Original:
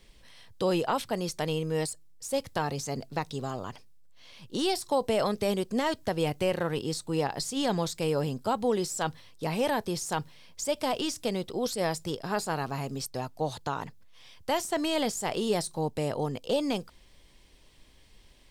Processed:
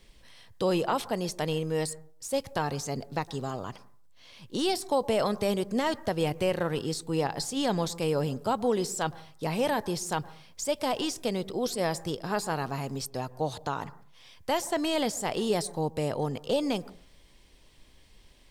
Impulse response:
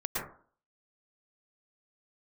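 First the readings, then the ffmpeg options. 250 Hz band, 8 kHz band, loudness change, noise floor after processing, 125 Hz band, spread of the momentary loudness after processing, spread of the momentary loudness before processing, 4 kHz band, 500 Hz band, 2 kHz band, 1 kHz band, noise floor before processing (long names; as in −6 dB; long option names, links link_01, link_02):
+0.5 dB, 0.0 dB, +0.5 dB, −56 dBFS, +0.5 dB, 7 LU, 7 LU, 0.0 dB, +0.5 dB, 0.0 dB, +0.5 dB, −57 dBFS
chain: -filter_complex "[0:a]asplit=2[link_01][link_02];[1:a]atrim=start_sample=2205,lowpass=2100[link_03];[link_02][link_03]afir=irnorm=-1:irlink=0,volume=-24.5dB[link_04];[link_01][link_04]amix=inputs=2:normalize=0"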